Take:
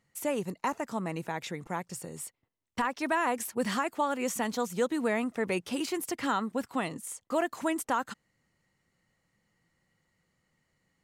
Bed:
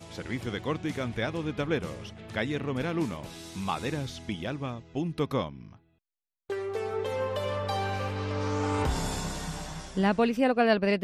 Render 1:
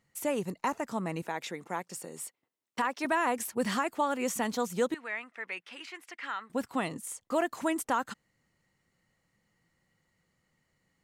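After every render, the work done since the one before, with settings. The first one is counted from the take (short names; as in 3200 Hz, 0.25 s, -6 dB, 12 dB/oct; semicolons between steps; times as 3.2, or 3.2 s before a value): 1.22–3.05 HPF 240 Hz; 4.94–6.5 band-pass 2000 Hz, Q 1.7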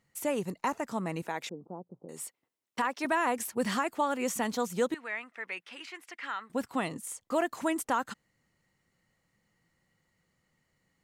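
1.49–2.09 Gaussian blur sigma 13 samples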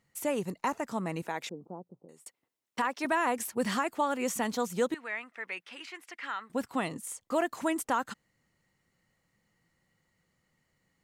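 1.59–2.26 fade out equal-power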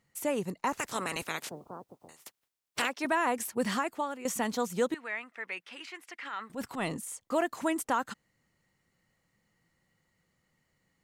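0.72–2.88 spectral limiter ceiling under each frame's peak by 25 dB; 3.6–4.25 fade out equal-power, to -13.5 dB; 6.19–7.15 transient shaper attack -10 dB, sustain +5 dB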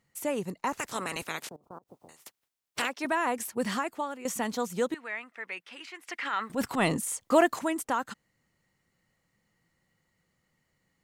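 1.47–1.88 level quantiser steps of 22 dB; 6.06–7.59 gain +7.5 dB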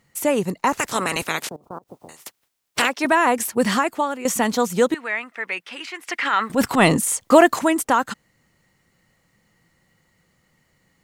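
gain +11 dB; limiter -2 dBFS, peak gain reduction 2.5 dB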